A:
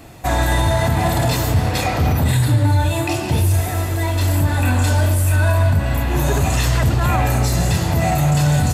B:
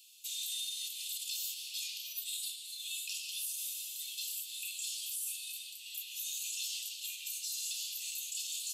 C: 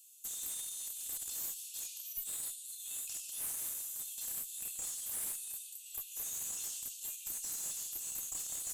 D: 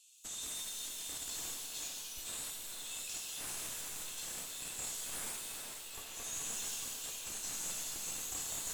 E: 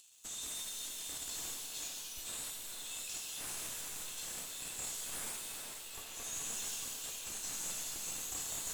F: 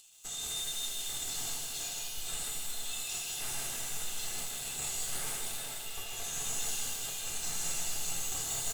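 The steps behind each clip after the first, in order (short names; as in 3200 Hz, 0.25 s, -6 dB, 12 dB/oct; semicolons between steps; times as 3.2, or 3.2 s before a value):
steep high-pass 2800 Hz 72 dB/oct; limiter -21.5 dBFS, peak gain reduction 7 dB; gain -7 dB
band shelf 3200 Hz -14.5 dB; one-sided clip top -40.5 dBFS, bottom -33 dBFS; gain +2.5 dB
air absorption 82 m; tape echo 0.422 s, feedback 75%, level -4.5 dB, low-pass 4000 Hz; shimmer reverb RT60 1.3 s, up +7 st, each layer -2 dB, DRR 4 dB; gain +5.5 dB
in parallel at -7 dB: companded quantiser 4-bit; on the sum: upward compressor, threshold -53 dBFS; gain -3.5 dB
echo 0.156 s -5 dB; reverb RT60 0.35 s, pre-delay 3 ms, DRR 7 dB; gain +2 dB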